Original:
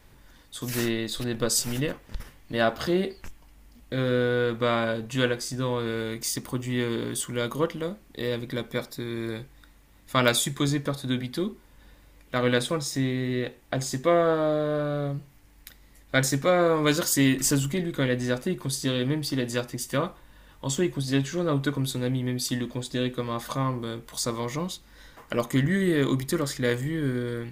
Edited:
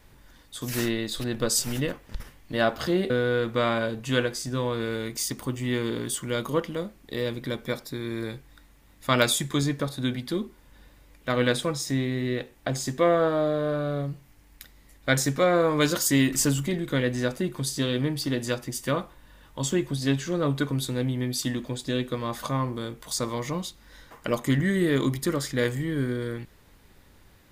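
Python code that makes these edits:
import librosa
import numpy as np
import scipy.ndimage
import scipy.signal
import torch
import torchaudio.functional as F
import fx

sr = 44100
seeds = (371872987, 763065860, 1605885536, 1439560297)

y = fx.edit(x, sr, fx.cut(start_s=3.1, length_s=1.06), tone=tone)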